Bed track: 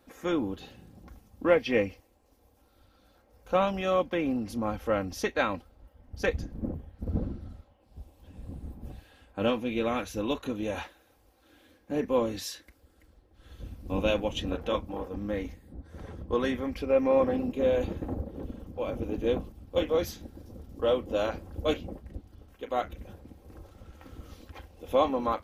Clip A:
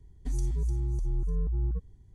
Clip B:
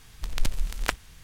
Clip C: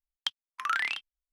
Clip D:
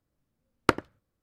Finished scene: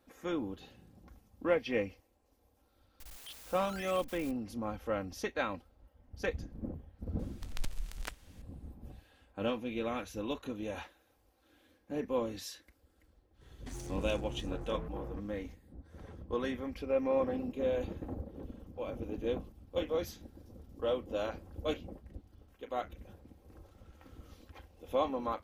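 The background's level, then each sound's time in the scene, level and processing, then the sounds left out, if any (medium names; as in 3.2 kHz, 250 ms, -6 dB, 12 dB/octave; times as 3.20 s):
bed track -7 dB
3.00 s: add C -11.5 dB + one-bit comparator
7.19 s: add B -17.5 dB + loudness maximiser +6.5 dB
13.41 s: add A -15.5 dB + overdrive pedal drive 33 dB, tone 5 kHz, clips at -20.5 dBFS
not used: D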